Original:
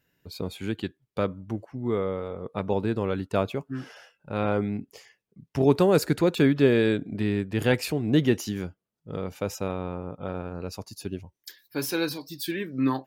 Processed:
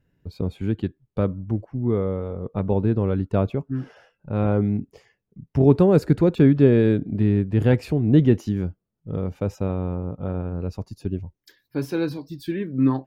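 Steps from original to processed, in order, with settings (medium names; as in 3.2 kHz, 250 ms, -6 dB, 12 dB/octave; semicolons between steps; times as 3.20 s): tilt EQ -3.5 dB/octave; trim -1.5 dB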